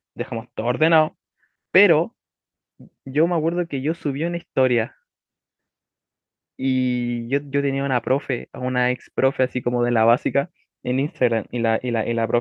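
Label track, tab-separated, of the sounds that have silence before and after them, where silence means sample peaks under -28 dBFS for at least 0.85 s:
3.070000	4.860000	sound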